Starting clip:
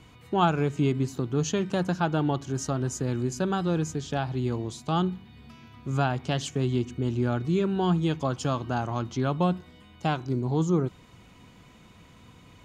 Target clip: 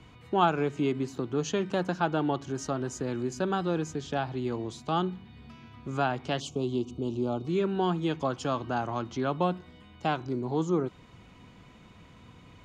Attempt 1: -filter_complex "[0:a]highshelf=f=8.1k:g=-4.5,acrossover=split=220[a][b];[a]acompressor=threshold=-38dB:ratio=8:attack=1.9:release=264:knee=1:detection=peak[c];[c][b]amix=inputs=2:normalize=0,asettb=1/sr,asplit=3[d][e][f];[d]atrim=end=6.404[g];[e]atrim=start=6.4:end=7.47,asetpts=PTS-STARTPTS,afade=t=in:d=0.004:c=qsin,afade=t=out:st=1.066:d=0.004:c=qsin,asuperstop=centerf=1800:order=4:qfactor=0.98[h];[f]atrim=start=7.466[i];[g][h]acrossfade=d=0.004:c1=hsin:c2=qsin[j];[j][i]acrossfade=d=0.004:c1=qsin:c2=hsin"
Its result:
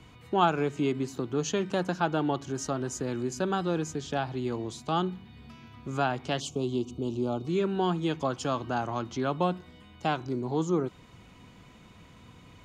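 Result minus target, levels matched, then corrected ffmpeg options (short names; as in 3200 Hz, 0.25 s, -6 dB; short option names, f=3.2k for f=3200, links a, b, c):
8000 Hz band +3.5 dB
-filter_complex "[0:a]highshelf=f=8.1k:g=-14,acrossover=split=220[a][b];[a]acompressor=threshold=-38dB:ratio=8:attack=1.9:release=264:knee=1:detection=peak[c];[c][b]amix=inputs=2:normalize=0,asettb=1/sr,asplit=3[d][e][f];[d]atrim=end=6.404[g];[e]atrim=start=6.4:end=7.47,asetpts=PTS-STARTPTS,afade=t=in:d=0.004:c=qsin,afade=t=out:st=1.066:d=0.004:c=qsin,asuperstop=centerf=1800:order=4:qfactor=0.98[h];[f]atrim=start=7.466[i];[g][h]acrossfade=d=0.004:c1=hsin:c2=qsin[j];[j][i]acrossfade=d=0.004:c1=qsin:c2=hsin"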